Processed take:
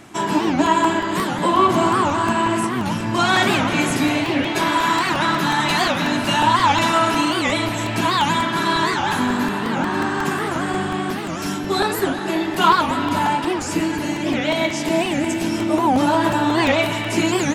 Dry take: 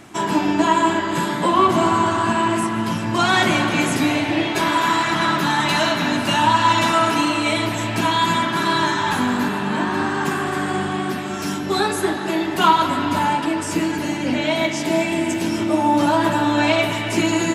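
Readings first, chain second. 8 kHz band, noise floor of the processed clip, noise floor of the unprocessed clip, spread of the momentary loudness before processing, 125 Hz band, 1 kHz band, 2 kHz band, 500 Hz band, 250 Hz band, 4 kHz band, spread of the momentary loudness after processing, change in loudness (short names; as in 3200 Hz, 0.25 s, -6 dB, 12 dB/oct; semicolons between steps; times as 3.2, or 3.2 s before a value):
0.0 dB, -25 dBFS, -25 dBFS, 6 LU, 0.0 dB, 0.0 dB, 0.0 dB, 0.0 dB, 0.0 dB, 0.0 dB, 6 LU, 0.0 dB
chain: crackling interface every 0.18 s, samples 128, repeat, from 0.66; record warp 78 rpm, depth 250 cents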